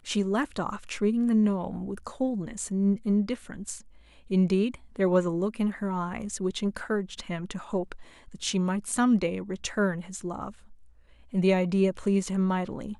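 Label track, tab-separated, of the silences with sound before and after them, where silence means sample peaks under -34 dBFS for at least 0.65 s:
10.490000	11.340000	silence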